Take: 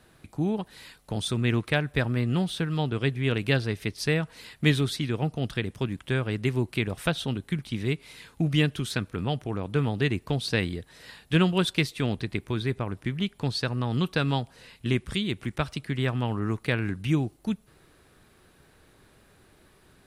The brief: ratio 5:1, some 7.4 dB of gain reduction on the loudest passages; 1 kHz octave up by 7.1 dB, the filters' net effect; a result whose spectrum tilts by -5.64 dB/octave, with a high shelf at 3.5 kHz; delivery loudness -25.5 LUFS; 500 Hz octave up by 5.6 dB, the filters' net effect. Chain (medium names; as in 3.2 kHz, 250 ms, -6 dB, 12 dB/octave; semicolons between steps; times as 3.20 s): peaking EQ 500 Hz +5.5 dB; peaking EQ 1 kHz +8 dB; treble shelf 3.5 kHz -6 dB; compression 5:1, threshold -24 dBFS; trim +5 dB